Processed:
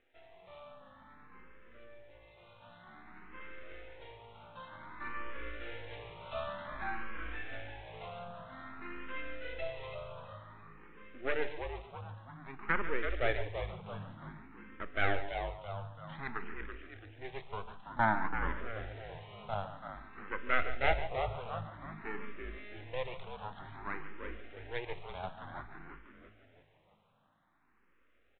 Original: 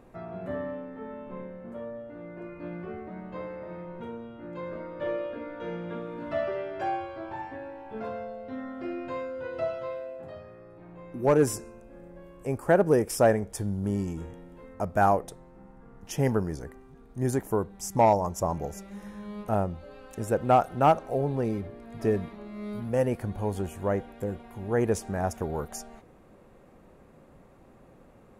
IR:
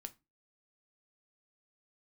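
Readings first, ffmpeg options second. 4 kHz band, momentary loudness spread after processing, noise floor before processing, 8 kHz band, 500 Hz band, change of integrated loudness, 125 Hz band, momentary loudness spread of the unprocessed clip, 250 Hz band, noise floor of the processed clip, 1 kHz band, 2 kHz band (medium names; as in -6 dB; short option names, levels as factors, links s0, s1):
-0.5 dB, 22 LU, -55 dBFS, under -40 dB, -14.0 dB, -10.5 dB, -13.0 dB, 19 LU, -16.5 dB, -69 dBFS, -9.5 dB, +1.5 dB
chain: -filter_complex "[0:a]lowpass=f=2600:w=0.5412,lowpass=f=2600:w=1.3066,aderivative,aresample=8000,aeval=exprs='max(val(0),0)':c=same,aresample=44100,equalizer=f=520:w=1.5:g=-3,dynaudnorm=f=300:g=21:m=2.51,bandreject=f=143.8:t=h:w=4,bandreject=f=287.6:t=h:w=4,bandreject=f=431.4:t=h:w=4,bandreject=f=575.2:t=h:w=4,bandreject=f=719:t=h:w=4,bandreject=f=862.8:t=h:w=4,bandreject=f=1006.6:t=h:w=4,bandreject=f=1150.4:t=h:w=4,bandreject=f=1294.2:t=h:w=4,bandreject=f=1438:t=h:w=4,bandreject=f=1581.8:t=h:w=4,bandreject=f=1725.6:t=h:w=4,bandreject=f=1869.4:t=h:w=4,bandreject=f=2013.2:t=h:w=4,bandreject=f=2157:t=h:w=4,bandreject=f=2300.8:t=h:w=4,bandreject=f=2444.6:t=h:w=4,bandreject=f=2588.4:t=h:w=4,bandreject=f=2732.2:t=h:w=4,bandreject=f=2876:t=h:w=4,bandreject=f=3019.8:t=h:w=4,bandreject=f=3163.6:t=h:w=4,bandreject=f=3307.4:t=h:w=4,bandreject=f=3451.2:t=h:w=4,bandreject=f=3595:t=h:w=4,bandreject=f=3738.8:t=h:w=4,bandreject=f=3882.6:t=h:w=4,bandreject=f=4026.4:t=h:w=4,bandreject=f=4170.2:t=h:w=4,bandreject=f=4314:t=h:w=4,bandreject=f=4457.8:t=h:w=4,bandreject=f=4601.6:t=h:w=4,bandreject=f=4745.4:t=h:w=4,bandreject=f=4889.2:t=h:w=4,bandreject=f=5033:t=h:w=4,bandreject=f=5176.8:t=h:w=4,asplit=7[s0][s1][s2][s3][s4][s5][s6];[s1]adelay=333,afreqshift=-53,volume=0.422[s7];[s2]adelay=666,afreqshift=-106,volume=0.202[s8];[s3]adelay=999,afreqshift=-159,volume=0.0966[s9];[s4]adelay=1332,afreqshift=-212,volume=0.0468[s10];[s5]adelay=1665,afreqshift=-265,volume=0.0224[s11];[s6]adelay=1998,afreqshift=-318,volume=0.0107[s12];[s0][s7][s8][s9][s10][s11][s12]amix=inputs=7:normalize=0,asplit=2[s13][s14];[1:a]atrim=start_sample=2205,adelay=142[s15];[s14][s15]afir=irnorm=-1:irlink=0,volume=0.422[s16];[s13][s16]amix=inputs=2:normalize=0,asplit=2[s17][s18];[s18]afreqshift=0.53[s19];[s17][s19]amix=inputs=2:normalize=1,volume=3.35"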